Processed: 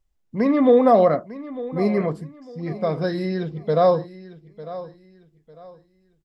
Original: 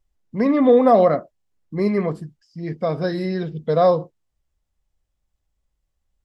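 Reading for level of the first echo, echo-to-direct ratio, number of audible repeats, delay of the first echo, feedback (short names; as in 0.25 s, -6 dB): -16.0 dB, -15.5 dB, 2, 0.9 s, 29%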